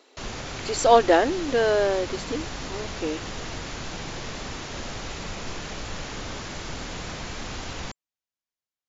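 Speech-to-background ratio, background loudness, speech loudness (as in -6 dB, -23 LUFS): 12.0 dB, -34.5 LUFS, -22.5 LUFS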